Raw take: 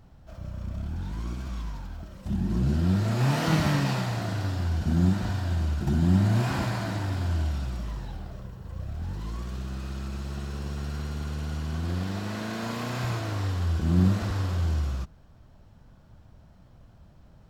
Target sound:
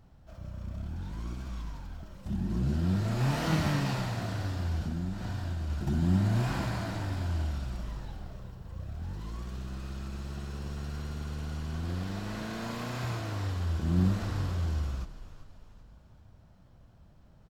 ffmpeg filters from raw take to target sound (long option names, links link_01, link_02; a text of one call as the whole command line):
ffmpeg -i in.wav -filter_complex "[0:a]asettb=1/sr,asplit=3[link_01][link_02][link_03];[link_01]atrim=end=4.814[link_04];[link_02]atrim=start=4.81:end=5.7,asetpts=PTS-STARTPTS,afade=type=in:duration=0.004:curve=qsin,afade=type=out:start_time=0.886:duration=0.004:curve=qsin,acompressor=threshold=-26dB:ratio=6[link_05];[link_03]atrim=start=5.696[link_06];[link_04][link_05]acrossfade=duration=0.004:curve1=hsin:curve2=qsin[link_07];[link_07][link_06]acrossfade=duration=0.004:curve1=qsin:curve2=hsin,asplit=5[link_08][link_09][link_10][link_11][link_12];[link_09]adelay=390,afreqshift=-44,volume=-14dB[link_13];[link_10]adelay=780,afreqshift=-88,volume=-20.9dB[link_14];[link_11]adelay=1170,afreqshift=-132,volume=-27.9dB[link_15];[link_12]adelay=1560,afreqshift=-176,volume=-34.8dB[link_16];[link_08][link_13][link_14][link_15][link_16]amix=inputs=5:normalize=0,volume=-4.5dB" out.wav